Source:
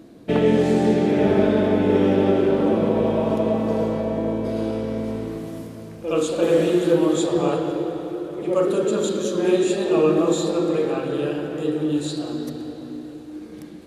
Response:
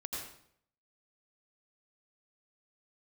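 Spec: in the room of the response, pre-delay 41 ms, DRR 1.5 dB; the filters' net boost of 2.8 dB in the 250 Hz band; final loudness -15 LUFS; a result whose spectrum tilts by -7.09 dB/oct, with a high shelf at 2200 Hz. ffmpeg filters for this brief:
-filter_complex "[0:a]equalizer=f=250:t=o:g=4,highshelf=f=2.2k:g=-5.5,asplit=2[a][b];[1:a]atrim=start_sample=2205,adelay=41[c];[b][c]afir=irnorm=-1:irlink=0,volume=-2dB[d];[a][d]amix=inputs=2:normalize=0,volume=2dB"

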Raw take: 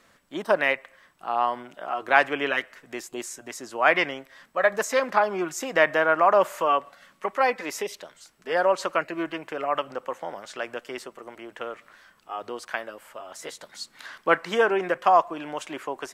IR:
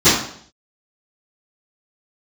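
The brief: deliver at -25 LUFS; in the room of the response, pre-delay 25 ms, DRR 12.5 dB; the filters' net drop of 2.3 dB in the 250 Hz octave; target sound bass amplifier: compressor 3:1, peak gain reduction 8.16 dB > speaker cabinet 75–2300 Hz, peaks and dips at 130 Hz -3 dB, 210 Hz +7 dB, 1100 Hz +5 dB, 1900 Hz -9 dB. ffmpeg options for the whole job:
-filter_complex "[0:a]equalizer=f=250:t=o:g=-5.5,asplit=2[a][b];[1:a]atrim=start_sample=2205,adelay=25[c];[b][c]afir=irnorm=-1:irlink=0,volume=-38dB[d];[a][d]amix=inputs=2:normalize=0,acompressor=threshold=-22dB:ratio=3,highpass=f=75:w=0.5412,highpass=f=75:w=1.3066,equalizer=f=130:t=q:w=4:g=-3,equalizer=f=210:t=q:w=4:g=7,equalizer=f=1.1k:t=q:w=4:g=5,equalizer=f=1.9k:t=q:w=4:g=-9,lowpass=f=2.3k:w=0.5412,lowpass=f=2.3k:w=1.3066,volume=4dB"

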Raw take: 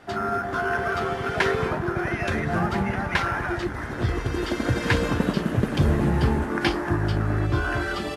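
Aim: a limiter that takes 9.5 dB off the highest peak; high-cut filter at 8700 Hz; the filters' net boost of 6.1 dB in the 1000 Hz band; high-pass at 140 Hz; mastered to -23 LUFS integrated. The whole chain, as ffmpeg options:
-af "highpass=140,lowpass=8.7k,equalizer=f=1k:t=o:g=8.5,volume=1.5dB,alimiter=limit=-12.5dB:level=0:latency=1"

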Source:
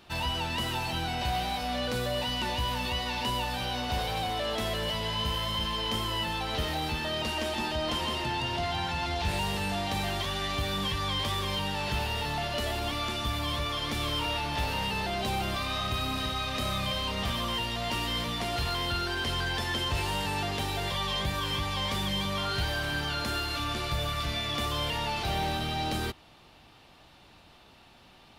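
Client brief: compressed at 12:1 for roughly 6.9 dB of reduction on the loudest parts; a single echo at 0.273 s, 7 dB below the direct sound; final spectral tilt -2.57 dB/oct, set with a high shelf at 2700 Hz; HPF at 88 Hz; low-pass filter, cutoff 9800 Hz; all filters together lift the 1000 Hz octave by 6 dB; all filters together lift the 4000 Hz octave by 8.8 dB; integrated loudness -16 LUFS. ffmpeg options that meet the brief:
-af "highpass=88,lowpass=9.8k,equalizer=f=1k:t=o:g=6.5,highshelf=f=2.7k:g=4,equalizer=f=4k:t=o:g=8,acompressor=threshold=-28dB:ratio=12,aecho=1:1:273:0.447,volume=13dB"

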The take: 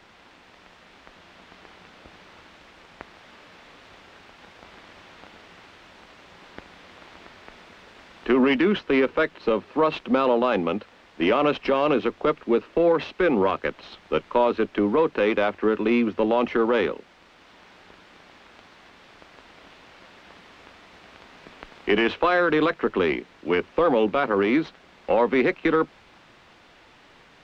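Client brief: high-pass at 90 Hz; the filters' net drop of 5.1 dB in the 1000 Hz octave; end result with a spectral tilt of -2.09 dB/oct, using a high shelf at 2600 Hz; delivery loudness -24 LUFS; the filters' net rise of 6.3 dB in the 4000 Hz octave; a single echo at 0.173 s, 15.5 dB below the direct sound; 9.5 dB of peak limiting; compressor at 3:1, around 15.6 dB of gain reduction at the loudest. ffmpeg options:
-af "highpass=90,equalizer=f=1k:t=o:g=-8,highshelf=f=2.6k:g=6,equalizer=f=4k:t=o:g=4.5,acompressor=threshold=-39dB:ratio=3,alimiter=level_in=5.5dB:limit=-24dB:level=0:latency=1,volume=-5.5dB,aecho=1:1:173:0.168,volume=18dB"

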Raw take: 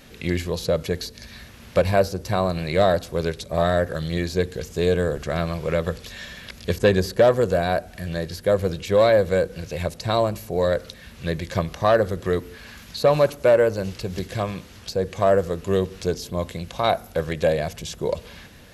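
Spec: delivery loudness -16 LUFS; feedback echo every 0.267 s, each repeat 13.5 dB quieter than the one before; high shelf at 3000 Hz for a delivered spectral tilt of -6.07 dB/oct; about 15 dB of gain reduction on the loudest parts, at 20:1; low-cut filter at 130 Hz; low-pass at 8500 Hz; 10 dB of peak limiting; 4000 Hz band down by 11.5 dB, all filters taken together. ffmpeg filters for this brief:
-af "highpass=130,lowpass=8.5k,highshelf=f=3k:g=-8,equalizer=f=4k:t=o:g=-7.5,acompressor=threshold=-27dB:ratio=20,alimiter=limit=-24dB:level=0:latency=1,aecho=1:1:267|534:0.211|0.0444,volume=20dB"

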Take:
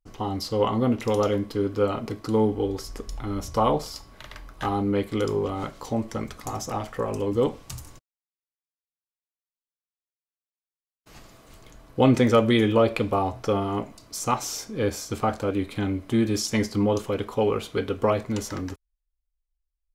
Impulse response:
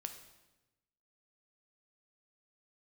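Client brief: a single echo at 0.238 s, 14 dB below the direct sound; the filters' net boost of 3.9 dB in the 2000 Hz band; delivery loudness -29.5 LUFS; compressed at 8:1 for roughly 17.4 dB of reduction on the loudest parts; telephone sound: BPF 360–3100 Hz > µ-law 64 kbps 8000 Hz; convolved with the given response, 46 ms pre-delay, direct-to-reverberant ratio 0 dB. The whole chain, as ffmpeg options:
-filter_complex "[0:a]equalizer=f=2k:t=o:g=5.5,acompressor=threshold=-32dB:ratio=8,aecho=1:1:238:0.2,asplit=2[a][b];[1:a]atrim=start_sample=2205,adelay=46[c];[b][c]afir=irnorm=-1:irlink=0,volume=3dB[d];[a][d]amix=inputs=2:normalize=0,highpass=360,lowpass=3.1k,volume=7dB" -ar 8000 -c:a pcm_mulaw

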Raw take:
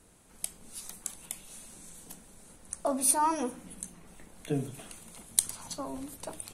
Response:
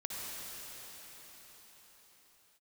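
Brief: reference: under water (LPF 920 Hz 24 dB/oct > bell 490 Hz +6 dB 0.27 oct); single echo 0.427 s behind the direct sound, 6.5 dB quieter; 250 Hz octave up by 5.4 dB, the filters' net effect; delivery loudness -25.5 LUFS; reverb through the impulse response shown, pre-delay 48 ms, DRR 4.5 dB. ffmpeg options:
-filter_complex "[0:a]equalizer=f=250:t=o:g=6,aecho=1:1:427:0.473,asplit=2[a][b];[1:a]atrim=start_sample=2205,adelay=48[c];[b][c]afir=irnorm=-1:irlink=0,volume=-7dB[d];[a][d]amix=inputs=2:normalize=0,lowpass=f=920:w=0.5412,lowpass=f=920:w=1.3066,equalizer=f=490:t=o:w=0.27:g=6,volume=6.5dB"

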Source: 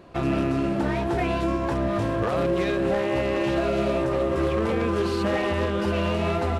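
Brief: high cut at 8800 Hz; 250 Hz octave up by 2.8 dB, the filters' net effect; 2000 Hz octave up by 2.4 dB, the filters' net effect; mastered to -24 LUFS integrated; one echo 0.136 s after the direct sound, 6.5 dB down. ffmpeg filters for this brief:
-af "lowpass=8.8k,equalizer=f=250:t=o:g=4,equalizer=f=2k:t=o:g=3,aecho=1:1:136:0.473,volume=-2dB"

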